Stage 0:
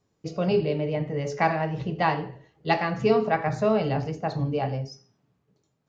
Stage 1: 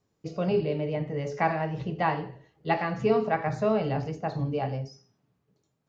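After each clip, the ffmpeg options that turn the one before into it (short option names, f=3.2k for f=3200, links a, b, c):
-filter_complex "[0:a]acrossover=split=2900[a][b];[b]acompressor=threshold=-46dB:ratio=4:attack=1:release=60[c];[a][c]amix=inputs=2:normalize=0,volume=-2.5dB"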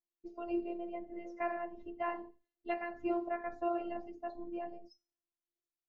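-af "afftdn=nr=18:nf=-40,afftfilt=real='hypot(re,im)*cos(PI*b)':imag='0':win_size=512:overlap=0.75,volume=-6.5dB"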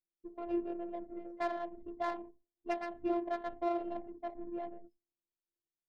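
-af "adynamicsmooth=sensitivity=5:basefreq=660,volume=1dB"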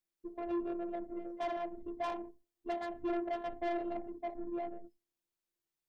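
-af "asoftclip=type=tanh:threshold=-34dB,volume=3.5dB"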